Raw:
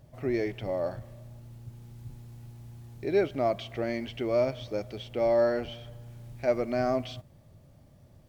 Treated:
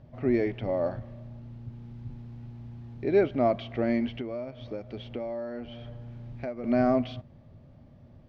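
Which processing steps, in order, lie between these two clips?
bell 240 Hz +7.5 dB 0.24 oct; 4.07–6.64 compressor 8:1, threshold -35 dBFS, peak gain reduction 15.5 dB; air absorption 240 m; gain +3 dB

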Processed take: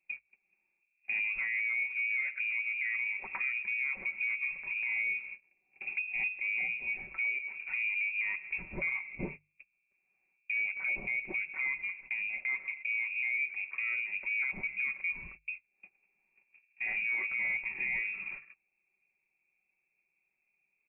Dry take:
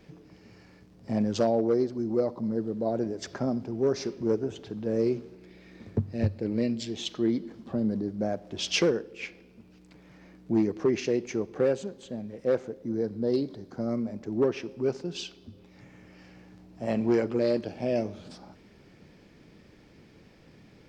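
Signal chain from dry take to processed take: bell 930 Hz -10 dB 2.6 oct; gate -49 dBFS, range -32 dB; compressor 3:1, threshold -39 dBFS, peak gain reduction 13 dB; inverted band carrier 2600 Hz; notches 50/100/150 Hz; comb 5.3 ms, depth 59%; limiter -33 dBFS, peak gain reduction 8 dB; gain +8 dB

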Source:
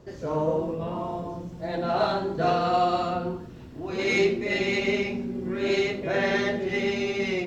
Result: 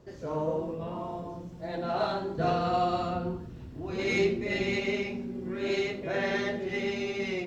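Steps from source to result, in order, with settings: 2.38–4.8 bell 63 Hz +8.5 dB 2.9 oct; gain -5 dB

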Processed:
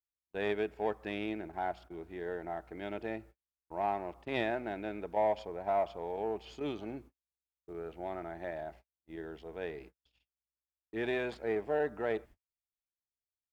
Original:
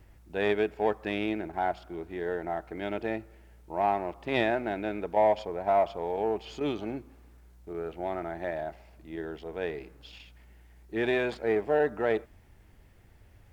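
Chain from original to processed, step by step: gate -45 dBFS, range -48 dB; gain -6.5 dB

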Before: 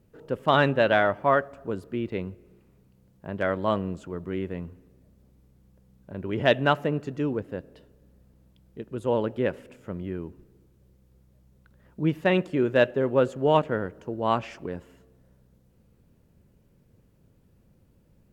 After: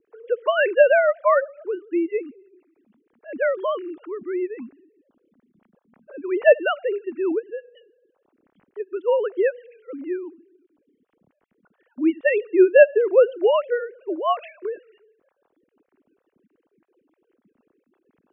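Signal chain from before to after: sine-wave speech; rotary speaker horn 6 Hz; gain +7 dB

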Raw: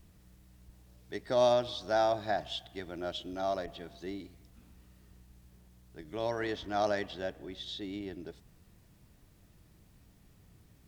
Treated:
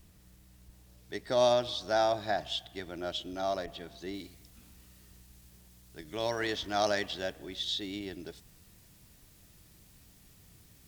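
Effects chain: high shelf 2400 Hz +5.5 dB, from 4.14 s +11.5 dB

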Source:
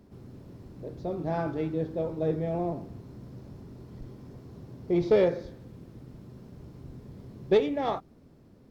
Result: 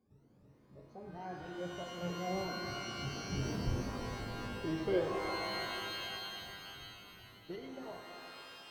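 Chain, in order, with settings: moving spectral ripple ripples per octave 1.9, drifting +2.8 Hz, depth 19 dB; Doppler pass-by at 3.53, 31 m/s, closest 4 m; shimmer reverb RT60 3.3 s, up +12 st, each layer -2 dB, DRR 4 dB; gain +6.5 dB

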